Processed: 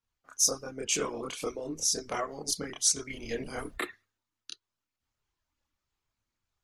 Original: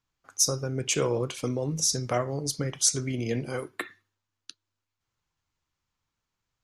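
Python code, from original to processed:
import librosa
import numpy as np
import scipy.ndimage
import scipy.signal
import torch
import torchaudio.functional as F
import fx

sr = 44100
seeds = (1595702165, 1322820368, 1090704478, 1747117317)

p1 = fx.dmg_noise_colour(x, sr, seeds[0], colour='brown', level_db=-49.0, at=(3.09, 3.74), fade=0.02)
p2 = fx.rider(p1, sr, range_db=4, speed_s=0.5)
p3 = p1 + F.gain(torch.from_numpy(p2), 2.0).numpy()
p4 = fx.hpss(p3, sr, part='harmonic', gain_db=-17)
p5 = fx.chorus_voices(p4, sr, voices=6, hz=0.37, base_ms=28, depth_ms=2.5, mix_pct=55)
y = F.gain(torch.from_numpy(p5), -4.5).numpy()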